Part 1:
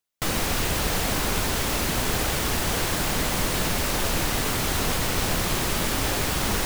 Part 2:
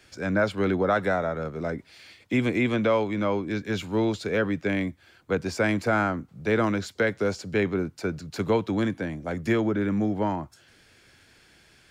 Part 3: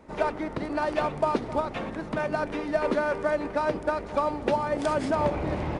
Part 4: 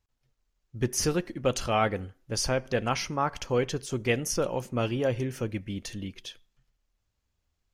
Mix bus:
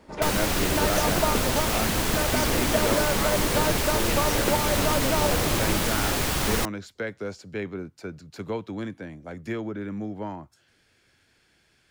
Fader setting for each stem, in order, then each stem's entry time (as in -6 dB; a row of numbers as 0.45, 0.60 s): -0.5, -7.5, -1.0, -7.0 dB; 0.00, 0.00, 0.00, 0.00 s